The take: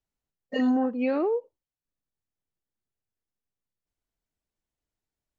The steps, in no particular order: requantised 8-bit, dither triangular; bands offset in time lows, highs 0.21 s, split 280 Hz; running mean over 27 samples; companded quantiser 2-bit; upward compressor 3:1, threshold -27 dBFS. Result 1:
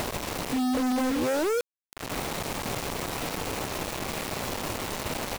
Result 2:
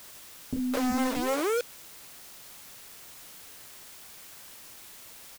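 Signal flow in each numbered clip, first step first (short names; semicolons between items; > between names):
bands offset in time > requantised > running mean > upward compressor > companded quantiser; running mean > companded quantiser > bands offset in time > upward compressor > requantised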